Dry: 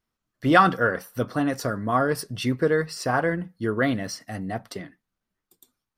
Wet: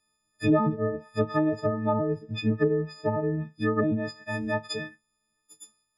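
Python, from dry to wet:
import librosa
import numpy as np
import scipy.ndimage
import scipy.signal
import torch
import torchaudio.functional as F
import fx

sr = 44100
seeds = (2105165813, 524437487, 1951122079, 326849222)

y = fx.freq_snap(x, sr, grid_st=6)
y = fx.env_lowpass_down(y, sr, base_hz=410.0, full_db=-17.0)
y = scipy.signal.sosfilt(scipy.signal.butter(6, 12000.0, 'lowpass', fs=sr, output='sos'), y)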